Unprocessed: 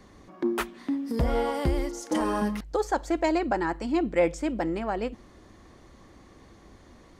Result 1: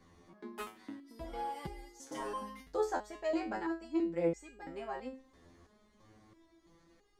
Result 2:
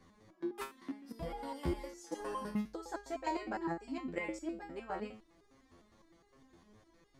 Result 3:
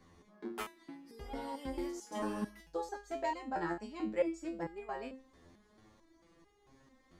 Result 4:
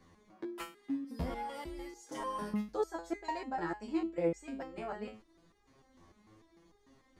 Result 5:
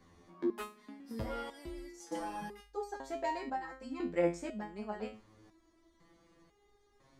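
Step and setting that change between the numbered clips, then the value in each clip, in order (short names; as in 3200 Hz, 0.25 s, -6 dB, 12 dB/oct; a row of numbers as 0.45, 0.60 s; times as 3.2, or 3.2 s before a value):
stepped resonator, rate: 3, 9.8, 4.5, 6.7, 2 Hz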